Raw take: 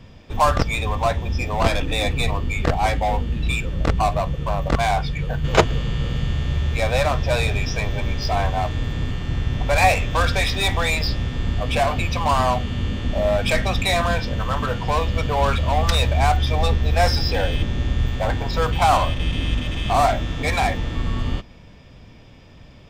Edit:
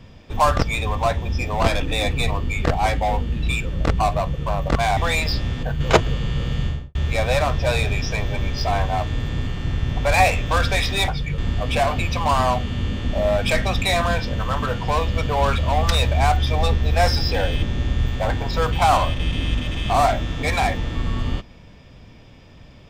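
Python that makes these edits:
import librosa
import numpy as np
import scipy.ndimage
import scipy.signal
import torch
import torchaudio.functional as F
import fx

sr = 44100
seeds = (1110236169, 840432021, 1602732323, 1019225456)

y = fx.studio_fade_out(x, sr, start_s=6.27, length_s=0.32)
y = fx.edit(y, sr, fx.swap(start_s=4.97, length_s=0.3, other_s=10.72, other_length_s=0.66), tone=tone)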